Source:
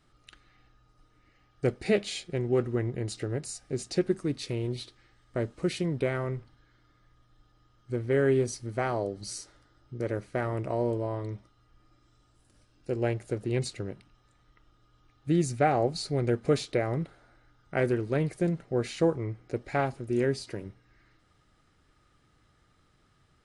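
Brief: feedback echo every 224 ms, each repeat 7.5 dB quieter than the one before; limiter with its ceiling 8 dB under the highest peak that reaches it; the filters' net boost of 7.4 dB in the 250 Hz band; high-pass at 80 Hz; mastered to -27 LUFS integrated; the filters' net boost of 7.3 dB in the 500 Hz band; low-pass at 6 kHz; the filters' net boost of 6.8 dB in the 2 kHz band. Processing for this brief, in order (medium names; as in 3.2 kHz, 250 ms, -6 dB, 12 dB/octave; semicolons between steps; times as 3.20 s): high-pass 80 Hz; low-pass 6 kHz; peaking EQ 250 Hz +8 dB; peaking EQ 500 Hz +6 dB; peaking EQ 2 kHz +8 dB; peak limiter -12.5 dBFS; feedback delay 224 ms, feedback 42%, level -7.5 dB; trim -1.5 dB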